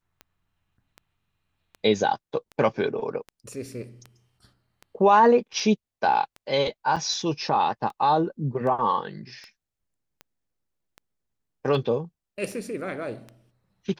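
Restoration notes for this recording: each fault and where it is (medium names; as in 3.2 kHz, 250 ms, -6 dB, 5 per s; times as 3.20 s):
tick 78 rpm -26 dBFS
6.96–6.97 s: dropout 5.3 ms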